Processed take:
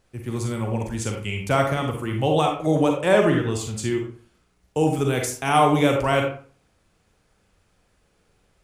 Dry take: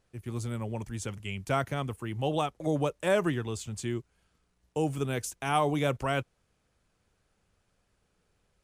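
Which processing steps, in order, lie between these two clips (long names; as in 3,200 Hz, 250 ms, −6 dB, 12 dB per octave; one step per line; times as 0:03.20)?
0:02.96–0:03.50: high-shelf EQ 8,600 Hz → 5,900 Hz −7.5 dB
convolution reverb RT60 0.45 s, pre-delay 36 ms, DRR 1.5 dB
level +7 dB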